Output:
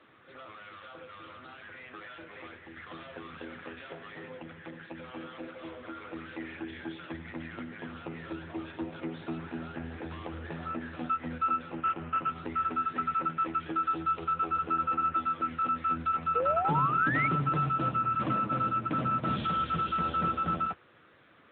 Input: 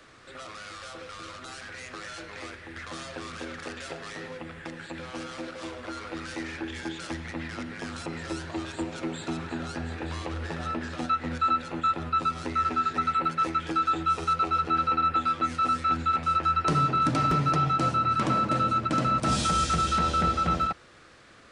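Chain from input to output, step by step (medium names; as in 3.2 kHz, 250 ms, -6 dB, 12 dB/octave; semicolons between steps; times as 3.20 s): 11.75–12.31 s: CVSD coder 16 kbps; 16.35–17.28 s: painted sound rise 460–2300 Hz -26 dBFS; trim -4 dB; AMR-NB 10.2 kbps 8 kHz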